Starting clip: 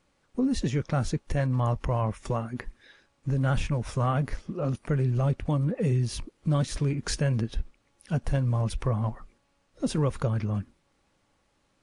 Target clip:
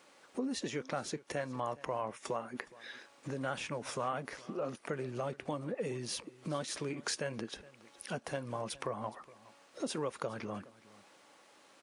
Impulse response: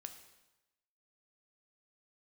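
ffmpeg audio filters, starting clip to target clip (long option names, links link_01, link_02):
-filter_complex "[0:a]highpass=370,acompressor=threshold=-57dB:ratio=2,asplit=2[link_01][link_02];[link_02]aecho=0:1:416:0.0944[link_03];[link_01][link_03]amix=inputs=2:normalize=0,volume=10.5dB"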